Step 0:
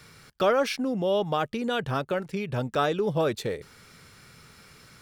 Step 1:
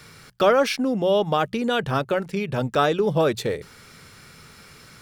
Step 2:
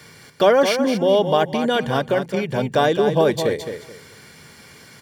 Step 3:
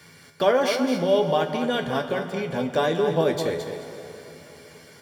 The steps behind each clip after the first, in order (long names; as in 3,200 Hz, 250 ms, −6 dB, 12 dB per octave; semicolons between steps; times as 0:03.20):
mains-hum notches 60/120/180 Hz; level +5 dB
notch comb filter 1,300 Hz; repeating echo 215 ms, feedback 24%, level −8 dB; level +3.5 dB
tuned comb filter 84 Hz, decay 0.17 s, harmonics all, mix 80%; dense smooth reverb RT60 3.7 s, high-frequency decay 0.75×, DRR 9 dB